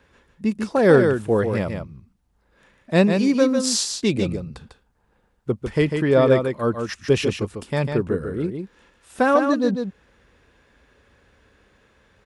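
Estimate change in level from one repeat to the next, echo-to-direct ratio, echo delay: repeats not evenly spaced, −6.0 dB, 148 ms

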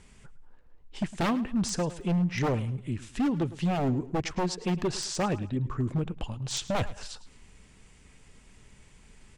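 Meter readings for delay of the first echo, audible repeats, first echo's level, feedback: 107 ms, 2, −17.0 dB, 32%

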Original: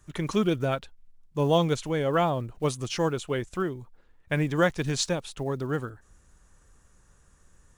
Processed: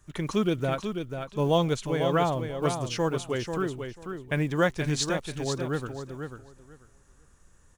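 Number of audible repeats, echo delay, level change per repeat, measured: 2, 491 ms, −15.5 dB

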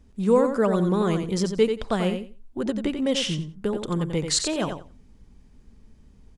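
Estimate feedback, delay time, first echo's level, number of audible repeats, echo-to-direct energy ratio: 17%, 89 ms, −7.0 dB, 2, −7.0 dB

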